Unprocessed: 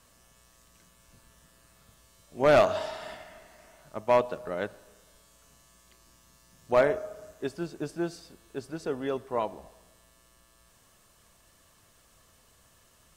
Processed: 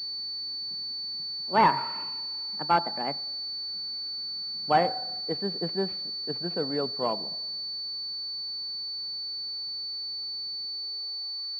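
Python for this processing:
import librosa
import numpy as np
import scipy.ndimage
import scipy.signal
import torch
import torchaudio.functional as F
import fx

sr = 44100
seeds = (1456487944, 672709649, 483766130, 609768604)

y = fx.speed_glide(x, sr, from_pct=163, to_pct=64)
y = fx.filter_sweep_highpass(y, sr, from_hz=160.0, to_hz=1300.0, start_s=10.63, end_s=11.48, q=2.0)
y = fx.pwm(y, sr, carrier_hz=4500.0)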